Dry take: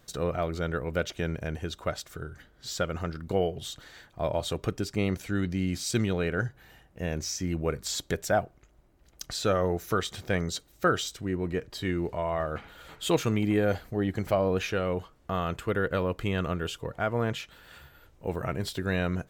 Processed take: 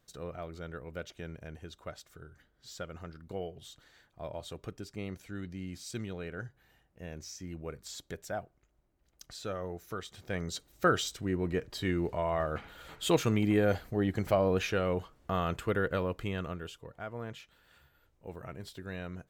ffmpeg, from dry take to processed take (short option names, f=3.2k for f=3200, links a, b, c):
-af "volume=-1.5dB,afade=t=in:st=10.14:d=0.75:silence=0.298538,afade=t=out:st=15.61:d=1.19:silence=0.281838"